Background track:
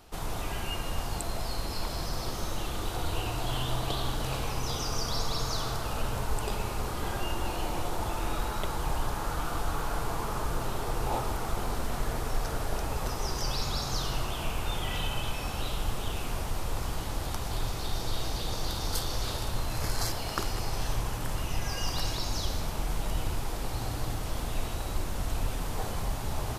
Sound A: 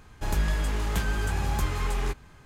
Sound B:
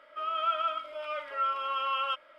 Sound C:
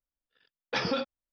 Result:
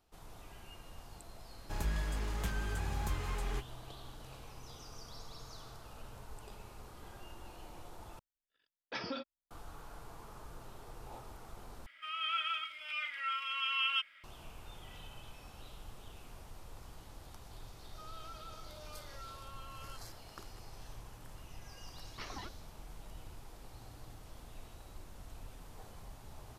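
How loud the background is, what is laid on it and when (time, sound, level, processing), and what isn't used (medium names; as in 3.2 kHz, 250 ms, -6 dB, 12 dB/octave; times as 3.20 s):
background track -19 dB
1.48 s: add A -9.5 dB
8.19 s: replace with C -11 dB + comb 3.1 ms, depth 38%
11.86 s: replace with B -7.5 dB + FFT filter 180 Hz 0 dB, 590 Hz -20 dB, 880 Hz -9 dB, 1.3 kHz -2 dB, 2.1 kHz +14 dB, 4.4 kHz +9 dB, 6.4 kHz +12 dB
17.82 s: add B -10 dB + compression 3:1, threshold -43 dBFS
21.45 s: add C -14 dB + ring modulator with a swept carrier 680 Hz, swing 35%, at 5.8 Hz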